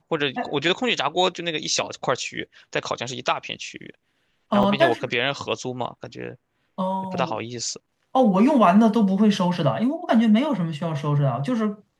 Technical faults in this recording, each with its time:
4.63 gap 4.8 ms

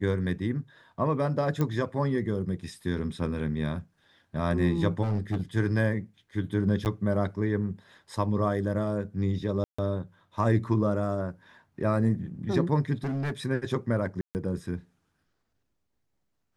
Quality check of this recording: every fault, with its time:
1.61 pop -16 dBFS
5.02–5.42 clipped -23.5 dBFS
6.85–6.86 gap 9.2 ms
9.64–9.79 gap 0.145 s
13.04–13.32 clipped -26.5 dBFS
14.21–14.35 gap 0.139 s

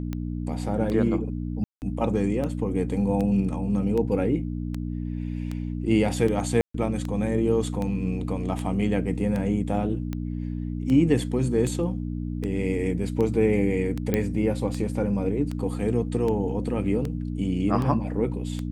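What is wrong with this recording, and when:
hum 60 Hz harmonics 5 -30 dBFS
tick 78 rpm -18 dBFS
1.64–1.82 gap 0.179 s
6.61–6.74 gap 0.134 s
14.14 pop -10 dBFS

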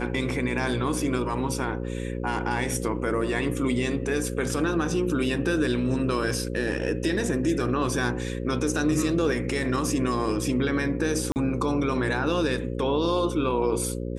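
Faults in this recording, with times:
buzz 60 Hz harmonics 9 -31 dBFS
11.32–11.36 gap 39 ms

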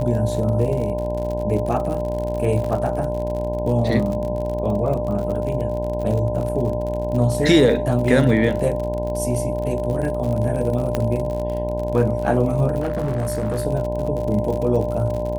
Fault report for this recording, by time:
buzz 60 Hz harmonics 17 -27 dBFS
crackle 59/s -27 dBFS
tone 600 Hz -25 dBFS
2.64 gap 4.4 ms
10.95 pop -8 dBFS
12.8–13.65 clipped -18.5 dBFS

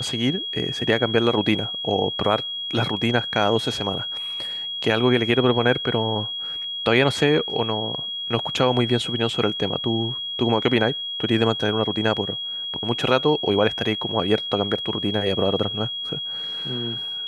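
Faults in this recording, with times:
tone 3300 Hz -27 dBFS

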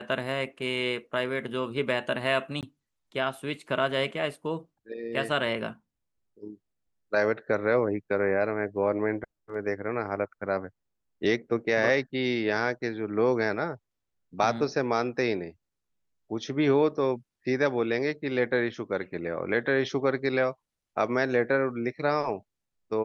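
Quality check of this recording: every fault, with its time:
2.61–2.63 gap 18 ms

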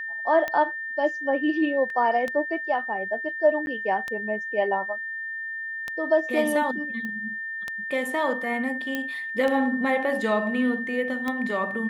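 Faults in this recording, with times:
tick 33 1/3 rpm -15 dBFS
tone 1800 Hz -30 dBFS
1.9 gap 2.1 ms
3.66–3.67 gap 11 ms
7.05 pop -22 dBFS
8.95 pop -14 dBFS

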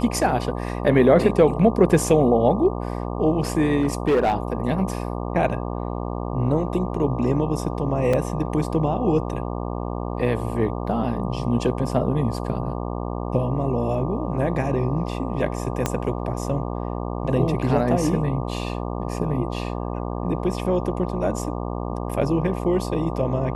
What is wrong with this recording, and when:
buzz 60 Hz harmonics 20 -28 dBFS
3.8–4.35 clipped -14.5 dBFS
8.13 gap 4.5 ms
15.86 pop -7 dBFS

